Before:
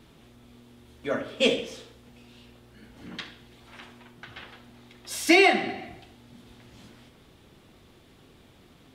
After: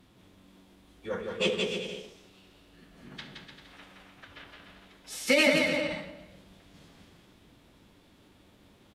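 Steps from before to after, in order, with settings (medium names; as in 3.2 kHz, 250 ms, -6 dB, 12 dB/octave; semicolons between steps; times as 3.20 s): bouncing-ball echo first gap 170 ms, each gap 0.75×, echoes 5; formant-preserving pitch shift -4 st; trim -5 dB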